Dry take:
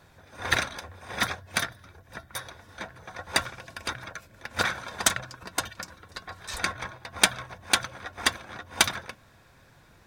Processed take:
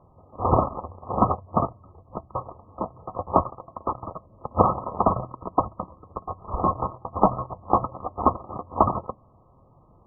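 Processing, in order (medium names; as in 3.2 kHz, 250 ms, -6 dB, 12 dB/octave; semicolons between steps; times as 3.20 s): 3.41–4.03 s: bass shelf 460 Hz -6.5 dB; waveshaping leveller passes 2; brick-wall FIR low-pass 1.3 kHz; trim +6 dB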